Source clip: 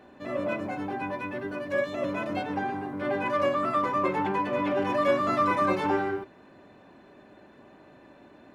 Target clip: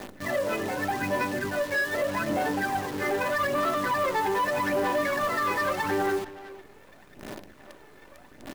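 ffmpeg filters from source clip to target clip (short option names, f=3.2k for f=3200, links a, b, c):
-filter_complex "[0:a]aphaser=in_gain=1:out_gain=1:delay=2.4:decay=0.69:speed=0.82:type=sinusoidal,equalizer=f=1.8k:t=o:w=0.2:g=10.5,acrossover=split=310|2500[a][b][c];[a]acompressor=threshold=-35dB:ratio=6[d];[d][b][c]amix=inputs=3:normalize=0,alimiter=limit=-20.5dB:level=0:latency=1:release=149,bandreject=f=60:t=h:w=6,bandreject=f=120:t=h:w=6,bandreject=f=180:t=h:w=6,bandreject=f=240:t=h:w=6,bandreject=f=300:t=h:w=6,bandreject=f=360:t=h:w=6,bandreject=f=420:t=h:w=6,bandreject=f=480:t=h:w=6,asplit=2[e][f];[f]adynamicsmooth=sensitivity=6:basefreq=790,volume=-2dB[g];[e][g]amix=inputs=2:normalize=0,acrusher=bits=7:dc=4:mix=0:aa=0.000001,asoftclip=type=tanh:threshold=-20dB,asplit=2[h][i];[i]adelay=370,highpass=300,lowpass=3.4k,asoftclip=type=hard:threshold=-29dB,volume=-12dB[j];[h][j]amix=inputs=2:normalize=0"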